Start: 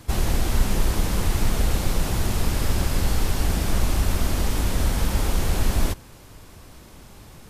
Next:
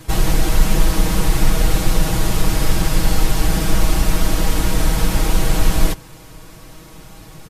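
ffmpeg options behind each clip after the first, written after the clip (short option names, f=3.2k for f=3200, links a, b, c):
-af "aecho=1:1:6.3:0.83,volume=4dB"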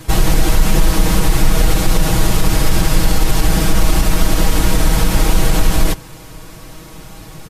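-af "alimiter=level_in=5.5dB:limit=-1dB:release=50:level=0:latency=1,volume=-1dB"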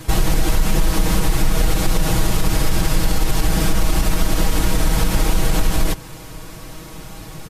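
-af "acompressor=threshold=-14dB:ratio=2"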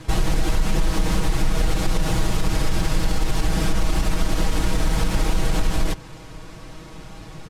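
-af "adynamicsmooth=sensitivity=6:basefreq=6.4k,volume=-3.5dB"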